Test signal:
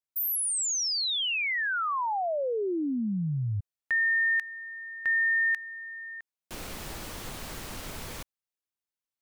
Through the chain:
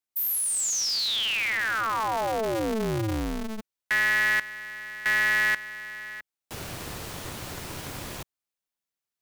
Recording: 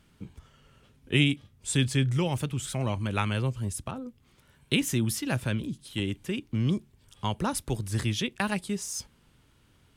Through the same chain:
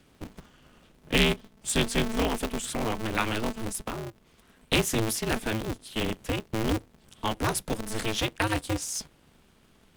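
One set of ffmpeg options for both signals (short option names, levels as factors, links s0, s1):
-filter_complex "[0:a]acrossover=split=160|2300[s0][s1][s2];[s0]acompressor=threshold=0.0112:ratio=6:release=86[s3];[s3][s1][s2]amix=inputs=3:normalize=0,aeval=exprs='val(0)*sgn(sin(2*PI*110*n/s))':c=same,volume=1.26"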